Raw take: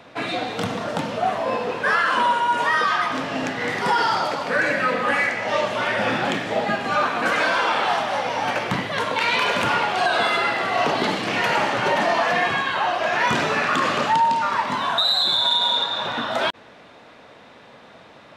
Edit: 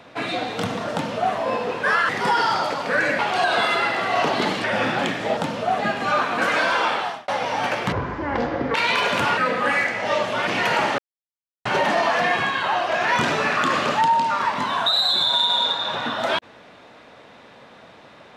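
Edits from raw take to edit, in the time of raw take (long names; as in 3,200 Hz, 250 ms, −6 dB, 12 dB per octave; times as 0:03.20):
0:00.92–0:01.34: duplicate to 0:06.63
0:02.09–0:03.70: remove
0:04.80–0:05.90: swap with 0:09.81–0:11.26
0:07.71–0:08.12: fade out
0:08.76–0:09.18: play speed 51%
0:11.77: splice in silence 0.67 s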